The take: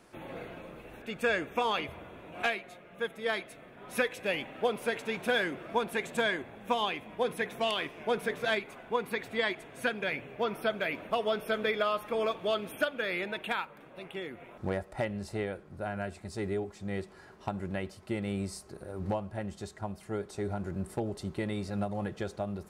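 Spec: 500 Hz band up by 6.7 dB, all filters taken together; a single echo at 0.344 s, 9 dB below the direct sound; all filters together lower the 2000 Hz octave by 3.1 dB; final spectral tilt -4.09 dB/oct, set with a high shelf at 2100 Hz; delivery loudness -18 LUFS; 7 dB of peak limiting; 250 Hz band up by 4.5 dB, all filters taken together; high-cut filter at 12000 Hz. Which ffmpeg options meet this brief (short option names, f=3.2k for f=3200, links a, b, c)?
-af "lowpass=12k,equalizer=f=250:t=o:g=4,equalizer=f=500:t=o:g=7,equalizer=f=2k:t=o:g=-7.5,highshelf=f=2.1k:g=5,alimiter=limit=-18dB:level=0:latency=1,aecho=1:1:344:0.355,volume=13dB"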